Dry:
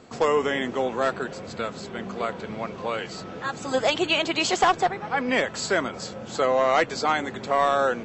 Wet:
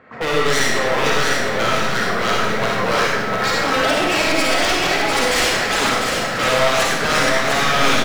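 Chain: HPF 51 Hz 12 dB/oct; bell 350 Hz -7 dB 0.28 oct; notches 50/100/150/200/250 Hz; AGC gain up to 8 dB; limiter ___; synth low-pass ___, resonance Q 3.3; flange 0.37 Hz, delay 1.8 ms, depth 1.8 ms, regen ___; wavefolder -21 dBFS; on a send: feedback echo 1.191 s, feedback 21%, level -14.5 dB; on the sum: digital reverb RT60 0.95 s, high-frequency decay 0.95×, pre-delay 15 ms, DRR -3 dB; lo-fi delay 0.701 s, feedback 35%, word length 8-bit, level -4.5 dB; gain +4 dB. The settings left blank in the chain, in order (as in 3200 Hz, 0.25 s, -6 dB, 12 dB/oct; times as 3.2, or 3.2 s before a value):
-10 dBFS, 1900 Hz, +80%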